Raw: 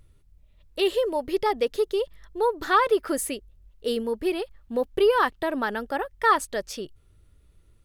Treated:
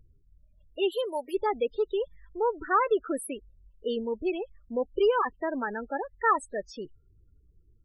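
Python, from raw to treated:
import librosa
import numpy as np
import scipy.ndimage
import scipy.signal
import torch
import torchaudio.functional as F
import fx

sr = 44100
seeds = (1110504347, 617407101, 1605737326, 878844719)

y = fx.riaa(x, sr, side='recording', at=(0.91, 1.33), fade=0.02)
y = fx.spec_topn(y, sr, count=16)
y = y * librosa.db_to_amplitude(-3.5)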